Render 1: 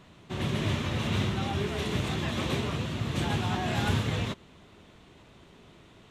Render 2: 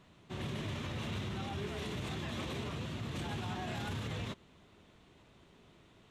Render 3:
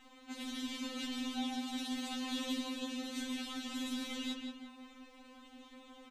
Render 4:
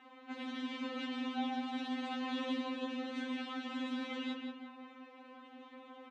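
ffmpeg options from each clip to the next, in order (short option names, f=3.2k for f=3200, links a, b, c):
-af "alimiter=limit=-23.5dB:level=0:latency=1:release=17,volume=-7.5dB"
-filter_complex "[0:a]acrossover=split=270|3000[a][b][c];[b]acompressor=threshold=-59dB:ratio=3[d];[a][d][c]amix=inputs=3:normalize=0,asplit=2[e][f];[f]adelay=177,lowpass=f=2.6k:p=1,volume=-3dB,asplit=2[g][h];[h]adelay=177,lowpass=f=2.6k:p=1,volume=0.47,asplit=2[i][j];[j]adelay=177,lowpass=f=2.6k:p=1,volume=0.47,asplit=2[k][l];[l]adelay=177,lowpass=f=2.6k:p=1,volume=0.47,asplit=2[m][n];[n]adelay=177,lowpass=f=2.6k:p=1,volume=0.47,asplit=2[o][p];[p]adelay=177,lowpass=f=2.6k:p=1,volume=0.47[q];[e][g][i][k][m][o][q]amix=inputs=7:normalize=0,afftfilt=real='re*3.46*eq(mod(b,12),0)':imag='im*3.46*eq(mod(b,12),0)':win_size=2048:overlap=0.75,volume=8dB"
-af "highpass=290,lowpass=2.1k,volume=5dB"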